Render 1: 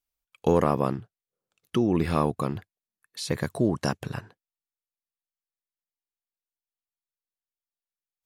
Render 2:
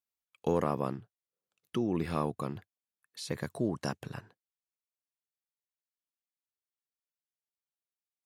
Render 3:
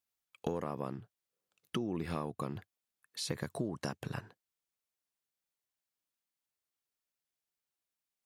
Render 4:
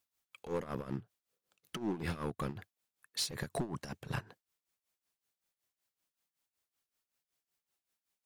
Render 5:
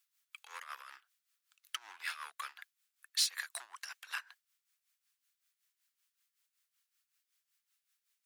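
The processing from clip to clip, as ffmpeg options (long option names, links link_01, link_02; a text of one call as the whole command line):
ffmpeg -i in.wav -af "highpass=89,volume=-7.5dB" out.wav
ffmpeg -i in.wav -af "acompressor=threshold=-36dB:ratio=6,volume=3.5dB" out.wav
ffmpeg -i in.wav -filter_complex "[0:a]asplit=2[link_01][link_02];[link_02]alimiter=level_in=1.5dB:limit=-24dB:level=0:latency=1,volume=-1.5dB,volume=-2.5dB[link_03];[link_01][link_03]amix=inputs=2:normalize=0,volume=30.5dB,asoftclip=hard,volume=-30.5dB,tremolo=f=5.3:d=0.79,volume=2dB" out.wav
ffmpeg -i in.wav -af "highpass=frequency=1300:width=0.5412,highpass=frequency=1300:width=1.3066,volume=5dB" out.wav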